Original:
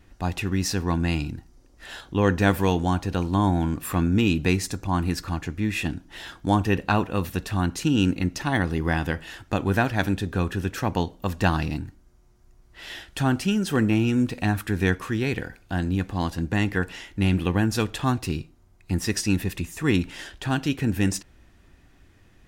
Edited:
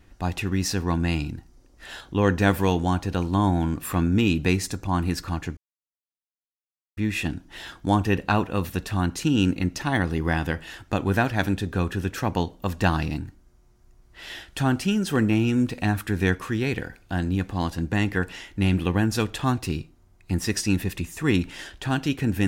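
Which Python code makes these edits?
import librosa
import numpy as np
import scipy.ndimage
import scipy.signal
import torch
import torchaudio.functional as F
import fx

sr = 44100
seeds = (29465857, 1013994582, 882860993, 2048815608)

y = fx.edit(x, sr, fx.insert_silence(at_s=5.57, length_s=1.4), tone=tone)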